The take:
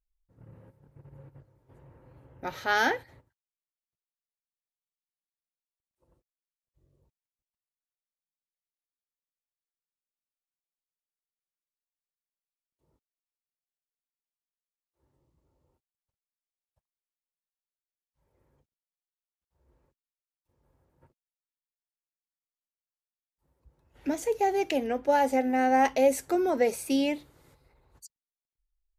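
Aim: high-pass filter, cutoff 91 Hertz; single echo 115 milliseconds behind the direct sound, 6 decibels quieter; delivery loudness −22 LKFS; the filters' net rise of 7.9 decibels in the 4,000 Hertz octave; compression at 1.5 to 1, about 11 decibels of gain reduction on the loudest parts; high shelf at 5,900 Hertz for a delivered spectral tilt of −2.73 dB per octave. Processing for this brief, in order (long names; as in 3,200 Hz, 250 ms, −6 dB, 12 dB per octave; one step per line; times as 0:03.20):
high-pass filter 91 Hz
parametric band 4,000 Hz +7.5 dB
high-shelf EQ 5,900 Hz +8.5 dB
downward compressor 1.5 to 1, threshold −49 dBFS
single-tap delay 115 ms −6 dB
level +13.5 dB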